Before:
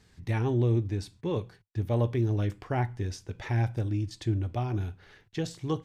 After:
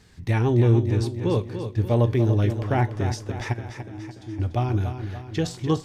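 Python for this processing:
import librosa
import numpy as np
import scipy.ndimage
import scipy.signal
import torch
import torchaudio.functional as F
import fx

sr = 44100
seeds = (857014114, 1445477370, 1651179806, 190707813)

p1 = fx.comb_fb(x, sr, f0_hz=320.0, decay_s=0.62, harmonics='all', damping=0.0, mix_pct=90, at=(3.52, 4.38), fade=0.02)
p2 = p1 + fx.echo_feedback(p1, sr, ms=291, feedback_pct=53, wet_db=-9.0, dry=0)
y = p2 * 10.0 ** (6.5 / 20.0)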